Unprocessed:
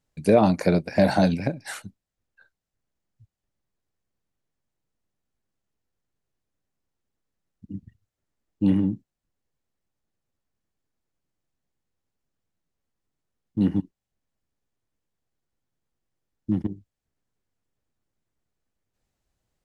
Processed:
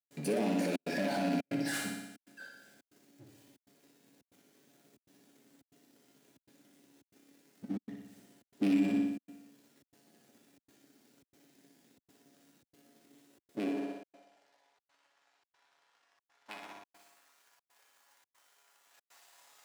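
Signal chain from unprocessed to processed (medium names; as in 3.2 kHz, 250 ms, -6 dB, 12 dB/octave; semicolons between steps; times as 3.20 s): rattle on loud lows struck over -21 dBFS, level -17 dBFS; 13.59–16.62 s: distance through air 120 m; power-law waveshaper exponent 0.5; peaking EQ 1.1 kHz -6.5 dB 0.58 oct; feedback comb 140 Hz, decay 0.38 s, harmonics all, mix 80%; flutter echo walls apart 10.3 m, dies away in 0.93 s; trance gate ".xxxxxx.xxxxx" 139 bpm -60 dB; high-pass 66 Hz; peak limiter -20 dBFS, peak gain reduction 9 dB; high-pass sweep 250 Hz -> 1 kHz, 13.11–14.93 s; trim -6.5 dB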